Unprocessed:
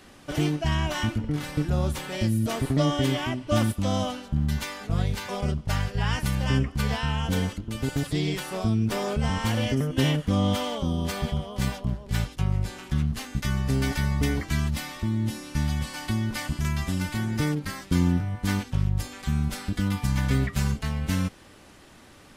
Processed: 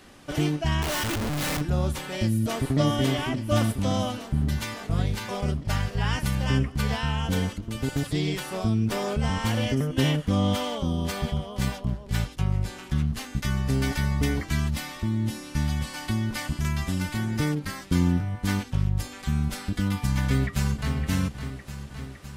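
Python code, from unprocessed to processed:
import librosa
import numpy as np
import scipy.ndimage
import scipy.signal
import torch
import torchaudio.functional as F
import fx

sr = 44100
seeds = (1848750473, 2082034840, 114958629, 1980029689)

y = fx.clip_1bit(x, sr, at=(0.82, 1.61))
y = fx.echo_throw(y, sr, start_s=2.22, length_s=0.56, ms=570, feedback_pct=75, wet_db=-7.5)
y = fx.echo_throw(y, sr, start_s=20.22, length_s=0.72, ms=560, feedback_pct=70, wet_db=-9.5)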